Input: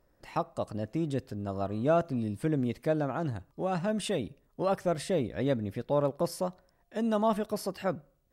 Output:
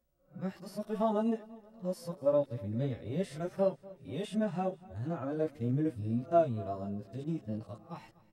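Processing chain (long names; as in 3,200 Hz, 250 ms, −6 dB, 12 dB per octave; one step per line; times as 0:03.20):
played backwards from end to start
multi-voice chorus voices 4, 0.33 Hz, delay 13 ms, depth 4.7 ms
harmonic and percussive parts rebalanced percussive −16 dB
repeating echo 243 ms, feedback 49%, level −21 dB
level +1.5 dB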